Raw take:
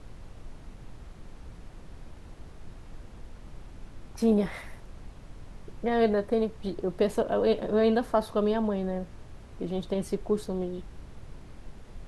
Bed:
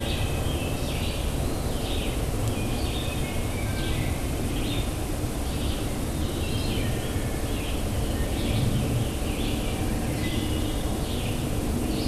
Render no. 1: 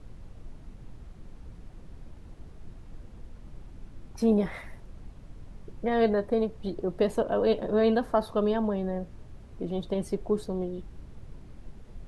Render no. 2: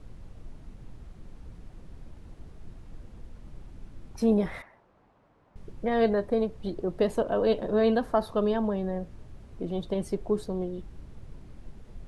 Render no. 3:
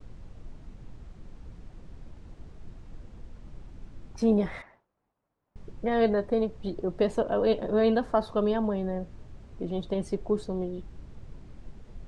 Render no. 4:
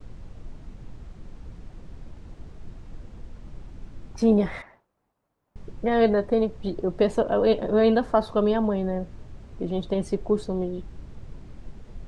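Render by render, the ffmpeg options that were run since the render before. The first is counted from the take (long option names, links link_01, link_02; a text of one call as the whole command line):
ffmpeg -i in.wav -af "afftdn=noise_reduction=6:noise_floor=-48" out.wav
ffmpeg -i in.wav -filter_complex "[0:a]asettb=1/sr,asplit=3[link_01][link_02][link_03];[link_01]atrim=end=4.624[link_04];[link_02]atrim=start=4.62:end=5.56,asetpts=PTS-STARTPTS,afade=type=in:duration=0.004:curve=qsin,afade=type=out:start_time=0.936:duration=0.004:curve=qsin,bandpass=frequency=930:width_type=q:width=1.1[link_05];[link_03]atrim=start=5.556[link_06];[link_04][link_05]acrossfade=duration=0.004:curve1=hsin:curve2=qsin[link_07];[link_07][link_06]acrossfade=duration=0.004:curve1=qsin:curve2=hsin" out.wav
ffmpeg -i in.wav -af "lowpass=frequency=8600:width=0.5412,lowpass=frequency=8600:width=1.3066,agate=range=-33dB:threshold=-51dB:ratio=3:detection=peak" out.wav
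ffmpeg -i in.wav -af "volume=4dB" out.wav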